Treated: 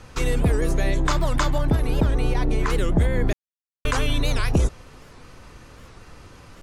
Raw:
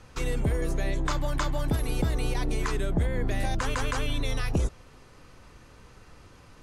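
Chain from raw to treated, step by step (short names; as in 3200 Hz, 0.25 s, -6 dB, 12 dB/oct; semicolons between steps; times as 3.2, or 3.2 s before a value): 1.58–2.7 high shelf 3500 Hz -11 dB; 3.33–3.85 mute; record warp 78 rpm, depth 250 cents; gain +6.5 dB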